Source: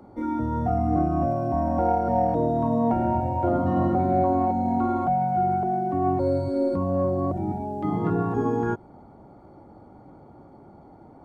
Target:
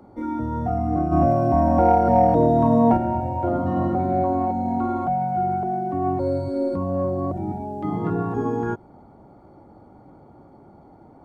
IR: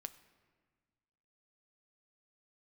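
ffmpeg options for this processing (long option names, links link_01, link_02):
-filter_complex "[0:a]asplit=3[link_01][link_02][link_03];[link_01]afade=type=out:start_time=1.11:duration=0.02[link_04];[link_02]acontrast=63,afade=type=in:start_time=1.11:duration=0.02,afade=type=out:start_time=2.96:duration=0.02[link_05];[link_03]afade=type=in:start_time=2.96:duration=0.02[link_06];[link_04][link_05][link_06]amix=inputs=3:normalize=0"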